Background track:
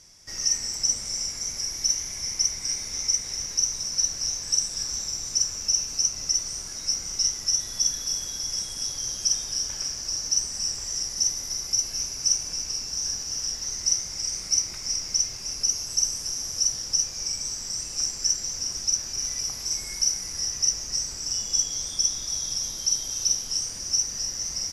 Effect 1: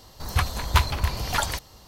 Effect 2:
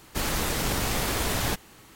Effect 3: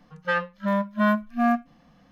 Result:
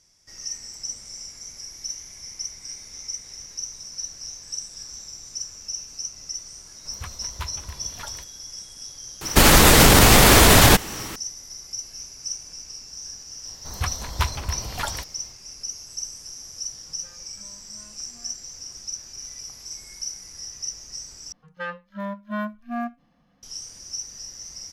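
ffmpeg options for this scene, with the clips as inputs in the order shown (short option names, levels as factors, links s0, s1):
-filter_complex "[1:a]asplit=2[s0][s1];[3:a]asplit=2[s2][s3];[0:a]volume=0.376[s4];[s0]bandreject=f=770:w=9.2[s5];[2:a]alimiter=level_in=8.91:limit=0.891:release=50:level=0:latency=1[s6];[s2]acompressor=threshold=0.00794:ratio=6:attack=3.2:release=140:knee=1:detection=peak[s7];[s4]asplit=2[s8][s9];[s8]atrim=end=21.324[s10];[s3]atrim=end=2.11,asetpts=PTS-STARTPTS,volume=0.422[s11];[s9]atrim=start=23.426[s12];[s5]atrim=end=1.87,asetpts=PTS-STARTPTS,volume=0.211,afade=t=in:d=0.004:c=hsin,afade=t=out:st=1.866:d=0.004:c=hsin,adelay=6650[s13];[s6]atrim=end=1.95,asetpts=PTS-STARTPTS,volume=0.841,afade=t=in:d=0.004:c=hsin,afade=t=out:st=1.946:d=0.004:c=hsin,adelay=9210[s14];[s1]atrim=end=1.87,asetpts=PTS-STARTPTS,volume=0.631,afade=t=in:d=0.004:c=hsin,afade=t=out:st=1.866:d=0.004:c=hsin,adelay=13450[s15];[s7]atrim=end=2.11,asetpts=PTS-STARTPTS,volume=0.251,afade=t=in:d=0.004:c=hsin,afade=t=out:st=2.106:d=0.004:c=hsin,adelay=16770[s16];[s10][s11]acrossfade=d=0.004:c1=hsin:c2=hsin[s17];[s17][s12]acrossfade=d=0.004:c1=hsin:c2=hsin[s18];[s18][s13][s14][s15][s16]amix=inputs=5:normalize=0"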